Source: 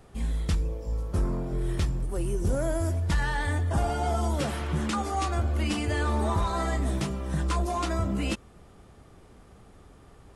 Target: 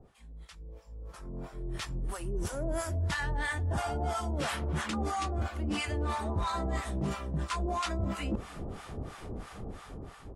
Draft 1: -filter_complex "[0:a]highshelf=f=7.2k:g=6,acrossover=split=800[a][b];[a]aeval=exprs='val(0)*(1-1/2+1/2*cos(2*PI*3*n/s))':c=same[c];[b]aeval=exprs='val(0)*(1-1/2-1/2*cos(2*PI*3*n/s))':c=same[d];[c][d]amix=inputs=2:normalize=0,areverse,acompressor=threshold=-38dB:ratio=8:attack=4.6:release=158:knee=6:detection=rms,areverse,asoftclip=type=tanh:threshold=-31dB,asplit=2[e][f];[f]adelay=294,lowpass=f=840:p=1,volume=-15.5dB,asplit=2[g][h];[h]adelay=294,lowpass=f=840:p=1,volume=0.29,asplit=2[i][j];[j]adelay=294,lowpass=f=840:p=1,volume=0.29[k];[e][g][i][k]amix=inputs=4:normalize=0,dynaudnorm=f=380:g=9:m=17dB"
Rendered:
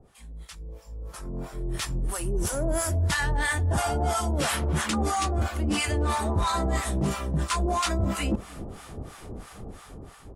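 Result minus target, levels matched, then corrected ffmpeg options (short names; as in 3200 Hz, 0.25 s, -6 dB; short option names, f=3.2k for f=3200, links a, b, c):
compressor: peak gain reduction -7 dB; 8000 Hz band +5.0 dB
-filter_complex "[0:a]highshelf=f=7.2k:g=-6,acrossover=split=800[a][b];[a]aeval=exprs='val(0)*(1-1/2+1/2*cos(2*PI*3*n/s))':c=same[c];[b]aeval=exprs='val(0)*(1-1/2-1/2*cos(2*PI*3*n/s))':c=same[d];[c][d]amix=inputs=2:normalize=0,areverse,acompressor=threshold=-46dB:ratio=8:attack=4.6:release=158:knee=6:detection=rms,areverse,asoftclip=type=tanh:threshold=-31dB,asplit=2[e][f];[f]adelay=294,lowpass=f=840:p=1,volume=-15.5dB,asplit=2[g][h];[h]adelay=294,lowpass=f=840:p=1,volume=0.29,asplit=2[i][j];[j]adelay=294,lowpass=f=840:p=1,volume=0.29[k];[e][g][i][k]amix=inputs=4:normalize=0,dynaudnorm=f=380:g=9:m=17dB"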